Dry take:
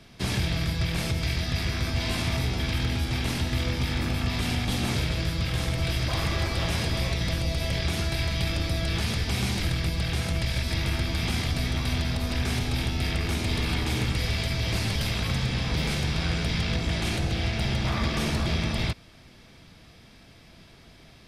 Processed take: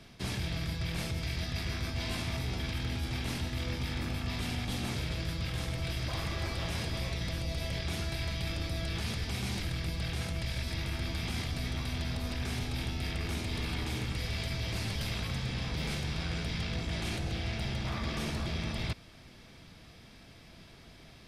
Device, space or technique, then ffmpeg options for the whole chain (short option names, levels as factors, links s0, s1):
compression on the reversed sound: -af "areverse,acompressor=threshold=0.0355:ratio=6,areverse,volume=0.794"